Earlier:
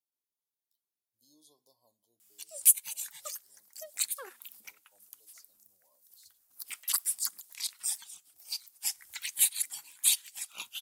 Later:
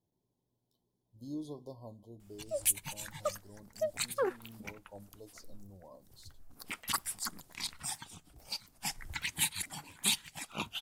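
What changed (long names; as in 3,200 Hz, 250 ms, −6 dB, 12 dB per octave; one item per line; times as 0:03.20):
background −6.0 dB
master: remove first difference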